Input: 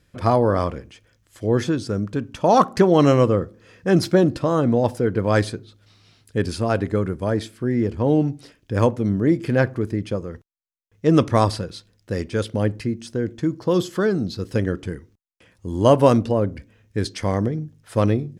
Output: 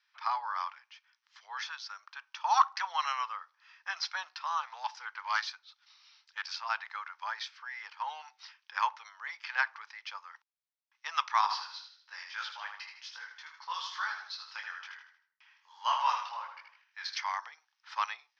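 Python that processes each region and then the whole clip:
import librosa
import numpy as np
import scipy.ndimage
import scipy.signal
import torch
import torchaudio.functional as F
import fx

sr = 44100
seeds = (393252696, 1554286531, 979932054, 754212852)

y = fx.chain(x, sr, fx.high_shelf(hz=7000.0, db=9.5),
    fx.doppler_dist(depth_ms=0.11), at=(4.47, 6.53))
y = fx.chain(y, sr, fx.echo_feedback(ms=78, feedback_pct=42, wet_db=-6.5),
    fx.detune_double(cents=39), at=(11.41, 17.17))
y = scipy.signal.sosfilt(scipy.signal.cheby1(5, 1.0, [860.0, 5800.0], 'bandpass', fs=sr, output='sos'), y)
y = fx.rider(y, sr, range_db=3, speed_s=2.0)
y = y * 10.0 ** (-3.0 / 20.0)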